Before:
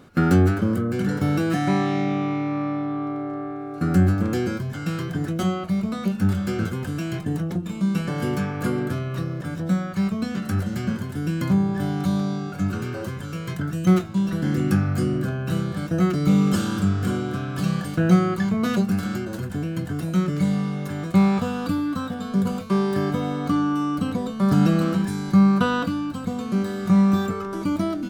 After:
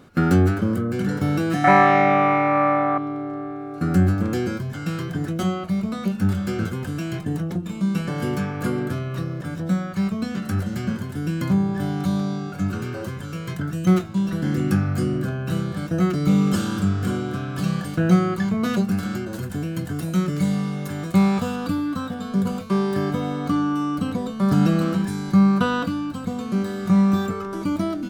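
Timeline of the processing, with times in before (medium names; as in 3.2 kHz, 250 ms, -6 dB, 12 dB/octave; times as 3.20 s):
1.64–2.98 s: high-order bell 1.1 kHz +14 dB 2.6 oct
19.35–21.56 s: treble shelf 5.3 kHz +6 dB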